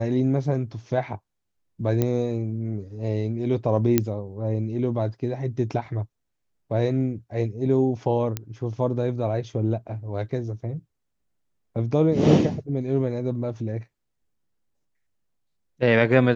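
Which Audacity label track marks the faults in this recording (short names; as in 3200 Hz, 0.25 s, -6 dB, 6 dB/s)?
2.020000	2.020000	pop -10 dBFS
3.980000	3.980000	pop -5 dBFS
8.370000	8.370000	pop -12 dBFS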